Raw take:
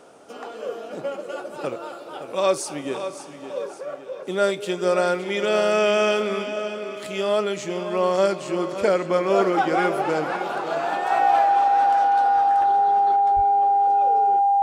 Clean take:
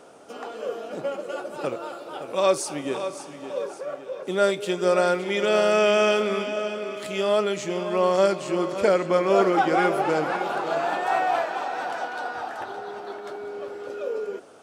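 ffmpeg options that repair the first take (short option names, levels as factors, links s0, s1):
-filter_complex "[0:a]bandreject=f=800:w=30,asplit=3[s0][s1][s2];[s0]afade=t=out:st=13.35:d=0.02[s3];[s1]highpass=f=140:w=0.5412,highpass=f=140:w=1.3066,afade=t=in:st=13.35:d=0.02,afade=t=out:st=13.47:d=0.02[s4];[s2]afade=t=in:st=13.47:d=0.02[s5];[s3][s4][s5]amix=inputs=3:normalize=0,asetnsamples=n=441:p=0,asendcmd='13.16 volume volume 4.5dB',volume=1"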